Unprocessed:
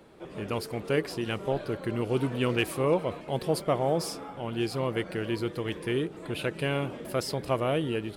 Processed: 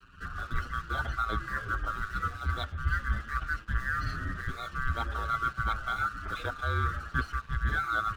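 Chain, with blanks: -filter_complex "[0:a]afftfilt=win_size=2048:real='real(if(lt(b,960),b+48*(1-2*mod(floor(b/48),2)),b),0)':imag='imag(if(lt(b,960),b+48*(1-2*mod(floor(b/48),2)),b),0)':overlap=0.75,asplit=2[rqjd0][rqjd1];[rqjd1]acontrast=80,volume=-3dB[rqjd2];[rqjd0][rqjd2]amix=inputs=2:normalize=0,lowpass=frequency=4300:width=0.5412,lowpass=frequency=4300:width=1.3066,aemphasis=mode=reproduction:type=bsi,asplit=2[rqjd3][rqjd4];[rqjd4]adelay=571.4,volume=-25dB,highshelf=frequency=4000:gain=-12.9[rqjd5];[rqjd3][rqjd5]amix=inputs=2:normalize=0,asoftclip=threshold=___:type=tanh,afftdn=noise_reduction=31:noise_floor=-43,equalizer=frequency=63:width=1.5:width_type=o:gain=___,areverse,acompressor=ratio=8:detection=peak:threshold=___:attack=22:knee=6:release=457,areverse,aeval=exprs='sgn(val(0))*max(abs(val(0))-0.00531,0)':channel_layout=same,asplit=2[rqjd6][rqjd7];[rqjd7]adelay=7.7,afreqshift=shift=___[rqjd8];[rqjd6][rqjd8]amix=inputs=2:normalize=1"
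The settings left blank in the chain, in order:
-9dB, 14.5, -24dB, -0.47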